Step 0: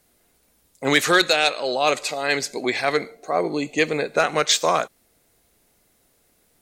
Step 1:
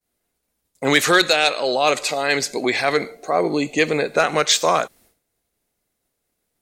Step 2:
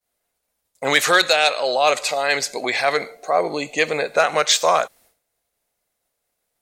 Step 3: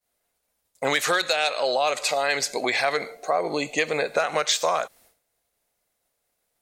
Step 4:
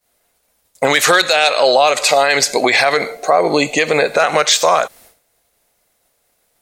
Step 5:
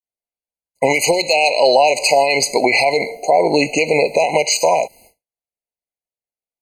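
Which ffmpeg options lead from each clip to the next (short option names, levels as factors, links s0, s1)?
-filter_complex "[0:a]agate=range=0.0224:threshold=0.00282:ratio=3:detection=peak,asplit=2[s0][s1];[s1]alimiter=limit=0.119:level=0:latency=1,volume=0.794[s2];[s0][s2]amix=inputs=2:normalize=0"
-af "lowshelf=f=440:t=q:w=1.5:g=-6.5"
-af "acompressor=threshold=0.112:ratio=6"
-af "alimiter=level_in=4.73:limit=0.891:release=50:level=0:latency=1,volume=0.891"
-af "agate=range=0.0224:threshold=0.00891:ratio=3:detection=peak,afftfilt=real='re*eq(mod(floor(b*sr/1024/1000),2),0)':imag='im*eq(mod(floor(b*sr/1024/1000),2),0)':win_size=1024:overlap=0.75"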